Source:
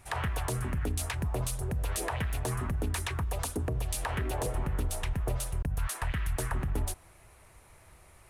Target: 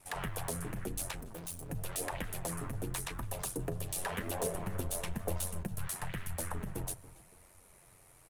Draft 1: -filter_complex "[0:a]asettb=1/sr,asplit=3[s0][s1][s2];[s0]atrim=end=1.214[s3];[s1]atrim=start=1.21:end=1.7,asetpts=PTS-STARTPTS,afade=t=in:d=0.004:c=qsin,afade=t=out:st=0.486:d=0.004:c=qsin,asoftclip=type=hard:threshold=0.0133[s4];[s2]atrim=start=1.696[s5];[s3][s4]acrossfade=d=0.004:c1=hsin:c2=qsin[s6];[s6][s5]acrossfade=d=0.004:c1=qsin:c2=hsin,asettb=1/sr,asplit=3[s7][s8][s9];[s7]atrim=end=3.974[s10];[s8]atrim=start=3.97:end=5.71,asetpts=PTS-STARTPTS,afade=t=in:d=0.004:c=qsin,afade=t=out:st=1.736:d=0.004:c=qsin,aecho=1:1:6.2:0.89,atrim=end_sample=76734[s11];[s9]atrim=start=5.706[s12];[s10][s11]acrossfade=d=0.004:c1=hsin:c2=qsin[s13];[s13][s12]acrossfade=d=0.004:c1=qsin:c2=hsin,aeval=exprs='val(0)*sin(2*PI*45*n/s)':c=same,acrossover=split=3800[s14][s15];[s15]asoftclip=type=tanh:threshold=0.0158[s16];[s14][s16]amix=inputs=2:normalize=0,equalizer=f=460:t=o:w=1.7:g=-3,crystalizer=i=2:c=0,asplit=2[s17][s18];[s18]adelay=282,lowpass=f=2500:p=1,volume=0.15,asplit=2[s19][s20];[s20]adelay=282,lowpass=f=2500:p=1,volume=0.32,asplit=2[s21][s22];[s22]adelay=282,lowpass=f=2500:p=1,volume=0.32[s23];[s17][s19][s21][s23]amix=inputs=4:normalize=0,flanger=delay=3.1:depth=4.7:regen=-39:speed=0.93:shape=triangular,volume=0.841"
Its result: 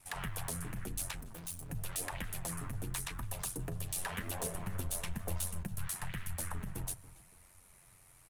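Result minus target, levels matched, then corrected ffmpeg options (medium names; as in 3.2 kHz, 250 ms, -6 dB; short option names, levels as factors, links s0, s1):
500 Hz band -6.0 dB
-filter_complex "[0:a]asettb=1/sr,asplit=3[s0][s1][s2];[s0]atrim=end=1.214[s3];[s1]atrim=start=1.21:end=1.7,asetpts=PTS-STARTPTS,afade=t=in:d=0.004:c=qsin,afade=t=out:st=0.486:d=0.004:c=qsin,asoftclip=type=hard:threshold=0.0133[s4];[s2]atrim=start=1.696[s5];[s3][s4]acrossfade=d=0.004:c1=hsin:c2=qsin[s6];[s6][s5]acrossfade=d=0.004:c1=qsin:c2=hsin,asettb=1/sr,asplit=3[s7][s8][s9];[s7]atrim=end=3.974[s10];[s8]atrim=start=3.97:end=5.71,asetpts=PTS-STARTPTS,afade=t=in:d=0.004:c=qsin,afade=t=out:st=1.736:d=0.004:c=qsin,aecho=1:1:6.2:0.89,atrim=end_sample=76734[s11];[s9]atrim=start=5.706[s12];[s10][s11]acrossfade=d=0.004:c1=hsin:c2=qsin[s13];[s13][s12]acrossfade=d=0.004:c1=qsin:c2=hsin,aeval=exprs='val(0)*sin(2*PI*45*n/s)':c=same,acrossover=split=3800[s14][s15];[s15]asoftclip=type=tanh:threshold=0.0158[s16];[s14][s16]amix=inputs=2:normalize=0,equalizer=f=460:t=o:w=1.7:g=5,crystalizer=i=2:c=0,asplit=2[s17][s18];[s18]adelay=282,lowpass=f=2500:p=1,volume=0.15,asplit=2[s19][s20];[s20]adelay=282,lowpass=f=2500:p=1,volume=0.32,asplit=2[s21][s22];[s22]adelay=282,lowpass=f=2500:p=1,volume=0.32[s23];[s17][s19][s21][s23]amix=inputs=4:normalize=0,flanger=delay=3.1:depth=4.7:regen=-39:speed=0.93:shape=triangular,volume=0.841"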